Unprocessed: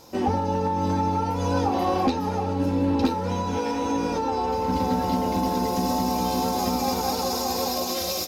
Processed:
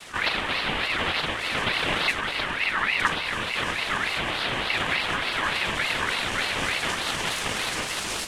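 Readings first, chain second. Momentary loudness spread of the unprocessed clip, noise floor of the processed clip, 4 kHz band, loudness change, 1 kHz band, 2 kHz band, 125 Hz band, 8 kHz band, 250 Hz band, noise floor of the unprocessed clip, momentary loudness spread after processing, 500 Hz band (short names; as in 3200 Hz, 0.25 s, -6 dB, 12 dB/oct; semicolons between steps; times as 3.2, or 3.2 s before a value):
3 LU, -31 dBFS, +7.0 dB, 0.0 dB, -5.5 dB, +16.5 dB, -9.5 dB, -0.5 dB, -13.0 dB, -28 dBFS, 3 LU, -8.0 dB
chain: zero-crossing step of -35 dBFS; noise vocoder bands 3; ring modulator with a swept carrier 1900 Hz, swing 30%, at 3.4 Hz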